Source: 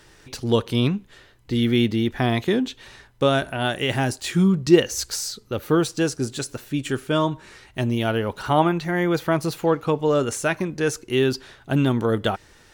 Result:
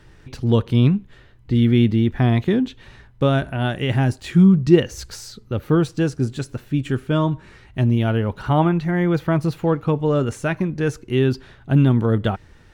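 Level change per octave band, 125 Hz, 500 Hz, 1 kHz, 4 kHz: +7.5, −0.5, −1.5, −4.5 decibels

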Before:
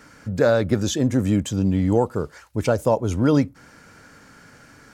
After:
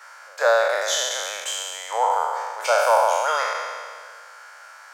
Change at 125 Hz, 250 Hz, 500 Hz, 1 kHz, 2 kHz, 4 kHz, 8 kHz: below −40 dB, below −35 dB, −0.5 dB, +10.5 dB, +8.5 dB, +8.0 dB, +7.5 dB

